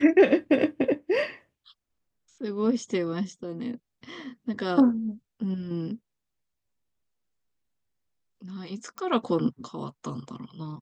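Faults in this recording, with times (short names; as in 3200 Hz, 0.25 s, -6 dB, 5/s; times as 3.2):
8.98 pop -22 dBFS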